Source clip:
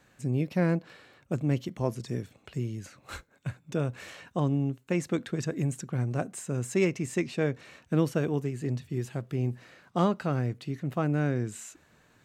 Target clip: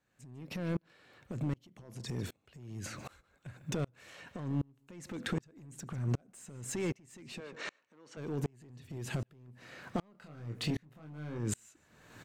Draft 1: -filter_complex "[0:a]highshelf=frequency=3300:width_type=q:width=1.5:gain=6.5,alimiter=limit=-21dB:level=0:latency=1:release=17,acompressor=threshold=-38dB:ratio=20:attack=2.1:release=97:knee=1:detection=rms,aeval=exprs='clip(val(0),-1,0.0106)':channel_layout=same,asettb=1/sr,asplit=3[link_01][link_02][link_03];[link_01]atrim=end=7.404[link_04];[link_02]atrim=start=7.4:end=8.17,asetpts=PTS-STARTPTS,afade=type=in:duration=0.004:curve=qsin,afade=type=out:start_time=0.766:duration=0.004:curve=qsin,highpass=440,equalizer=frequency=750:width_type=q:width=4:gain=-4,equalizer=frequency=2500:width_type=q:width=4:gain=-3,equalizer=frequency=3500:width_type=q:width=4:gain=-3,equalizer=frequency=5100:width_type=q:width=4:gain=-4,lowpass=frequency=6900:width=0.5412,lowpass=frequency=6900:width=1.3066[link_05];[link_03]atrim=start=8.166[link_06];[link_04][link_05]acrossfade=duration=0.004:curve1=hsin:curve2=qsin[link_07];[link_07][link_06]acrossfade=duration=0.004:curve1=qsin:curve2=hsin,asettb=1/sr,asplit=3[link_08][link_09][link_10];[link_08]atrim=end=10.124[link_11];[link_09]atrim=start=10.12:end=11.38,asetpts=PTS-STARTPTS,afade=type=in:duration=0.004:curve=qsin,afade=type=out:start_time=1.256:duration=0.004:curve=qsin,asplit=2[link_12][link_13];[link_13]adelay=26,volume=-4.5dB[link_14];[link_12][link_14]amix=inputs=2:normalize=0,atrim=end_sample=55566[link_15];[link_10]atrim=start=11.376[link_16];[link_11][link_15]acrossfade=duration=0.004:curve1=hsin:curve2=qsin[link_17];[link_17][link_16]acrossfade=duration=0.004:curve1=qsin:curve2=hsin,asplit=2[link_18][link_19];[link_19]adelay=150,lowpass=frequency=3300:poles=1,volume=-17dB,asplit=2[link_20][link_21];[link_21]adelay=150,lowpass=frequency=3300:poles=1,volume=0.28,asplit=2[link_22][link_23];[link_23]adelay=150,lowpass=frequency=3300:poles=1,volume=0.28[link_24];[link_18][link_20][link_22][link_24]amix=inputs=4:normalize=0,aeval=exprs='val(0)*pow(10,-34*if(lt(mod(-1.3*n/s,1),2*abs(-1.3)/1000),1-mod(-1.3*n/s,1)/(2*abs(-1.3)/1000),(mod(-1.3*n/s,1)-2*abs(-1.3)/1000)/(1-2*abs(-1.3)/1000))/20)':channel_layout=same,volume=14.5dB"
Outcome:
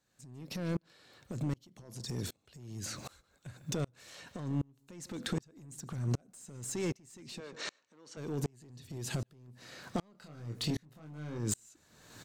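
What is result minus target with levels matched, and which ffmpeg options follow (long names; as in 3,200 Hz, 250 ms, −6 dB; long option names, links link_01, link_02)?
8,000 Hz band +3.5 dB
-filter_complex "[0:a]alimiter=limit=-21dB:level=0:latency=1:release=17,acompressor=threshold=-38dB:ratio=20:attack=2.1:release=97:knee=1:detection=rms,aeval=exprs='clip(val(0),-1,0.0106)':channel_layout=same,asettb=1/sr,asplit=3[link_01][link_02][link_03];[link_01]atrim=end=7.404[link_04];[link_02]atrim=start=7.4:end=8.17,asetpts=PTS-STARTPTS,afade=type=in:duration=0.004:curve=qsin,afade=type=out:start_time=0.766:duration=0.004:curve=qsin,highpass=440,equalizer=frequency=750:width_type=q:width=4:gain=-4,equalizer=frequency=2500:width_type=q:width=4:gain=-3,equalizer=frequency=3500:width_type=q:width=4:gain=-3,equalizer=frequency=5100:width_type=q:width=4:gain=-4,lowpass=frequency=6900:width=0.5412,lowpass=frequency=6900:width=1.3066[link_05];[link_03]atrim=start=8.166[link_06];[link_04][link_05]acrossfade=duration=0.004:curve1=hsin:curve2=qsin[link_07];[link_07][link_06]acrossfade=duration=0.004:curve1=qsin:curve2=hsin,asettb=1/sr,asplit=3[link_08][link_09][link_10];[link_08]atrim=end=10.124[link_11];[link_09]atrim=start=10.12:end=11.38,asetpts=PTS-STARTPTS,afade=type=in:duration=0.004:curve=qsin,afade=type=out:start_time=1.256:duration=0.004:curve=qsin,asplit=2[link_12][link_13];[link_13]adelay=26,volume=-4.5dB[link_14];[link_12][link_14]amix=inputs=2:normalize=0,atrim=end_sample=55566[link_15];[link_10]atrim=start=11.376[link_16];[link_11][link_15]acrossfade=duration=0.004:curve1=hsin:curve2=qsin[link_17];[link_17][link_16]acrossfade=duration=0.004:curve1=qsin:curve2=hsin,asplit=2[link_18][link_19];[link_19]adelay=150,lowpass=frequency=3300:poles=1,volume=-17dB,asplit=2[link_20][link_21];[link_21]adelay=150,lowpass=frequency=3300:poles=1,volume=0.28,asplit=2[link_22][link_23];[link_23]adelay=150,lowpass=frequency=3300:poles=1,volume=0.28[link_24];[link_18][link_20][link_22][link_24]amix=inputs=4:normalize=0,aeval=exprs='val(0)*pow(10,-34*if(lt(mod(-1.3*n/s,1),2*abs(-1.3)/1000),1-mod(-1.3*n/s,1)/(2*abs(-1.3)/1000),(mod(-1.3*n/s,1)-2*abs(-1.3)/1000)/(1-2*abs(-1.3)/1000))/20)':channel_layout=same,volume=14.5dB"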